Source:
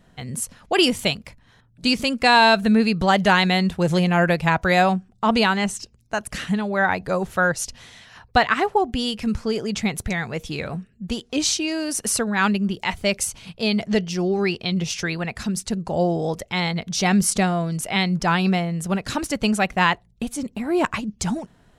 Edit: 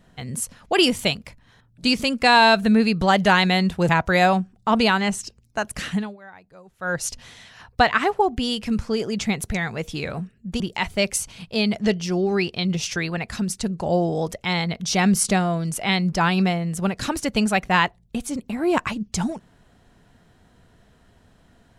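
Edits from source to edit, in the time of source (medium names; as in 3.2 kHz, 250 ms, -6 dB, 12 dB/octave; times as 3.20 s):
3.89–4.45 s: delete
6.49–7.58 s: dip -24 dB, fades 0.24 s
11.16–12.67 s: delete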